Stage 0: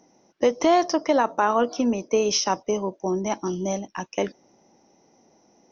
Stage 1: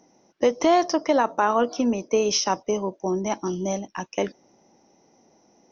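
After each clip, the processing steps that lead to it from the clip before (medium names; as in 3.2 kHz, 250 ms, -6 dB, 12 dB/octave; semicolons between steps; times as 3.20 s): no audible change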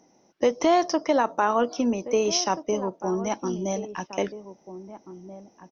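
echo from a far wall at 280 m, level -13 dB; trim -1.5 dB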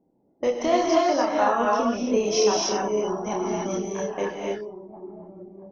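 level-controlled noise filter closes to 450 Hz, open at -22.5 dBFS; gated-style reverb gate 320 ms rising, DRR -2.5 dB; chorus voices 6, 0.86 Hz, delay 29 ms, depth 1.4 ms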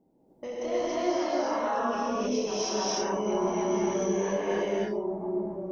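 peak limiter -16.5 dBFS, peak gain reduction 7 dB; reverse; compression 12:1, threshold -33 dBFS, peak gain reduction 13 dB; reverse; gated-style reverb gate 340 ms rising, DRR -7 dB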